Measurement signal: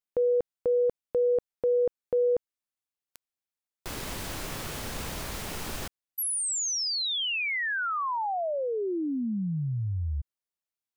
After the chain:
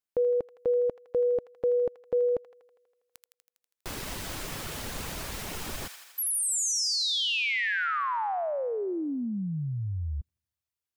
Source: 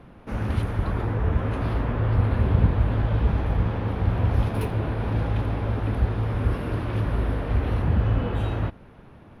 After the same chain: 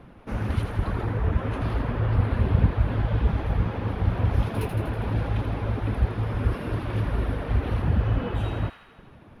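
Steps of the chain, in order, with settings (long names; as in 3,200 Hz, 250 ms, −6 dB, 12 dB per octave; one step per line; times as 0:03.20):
reverb reduction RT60 0.54 s
delay with a high-pass on its return 81 ms, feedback 67%, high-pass 1,400 Hz, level −6.5 dB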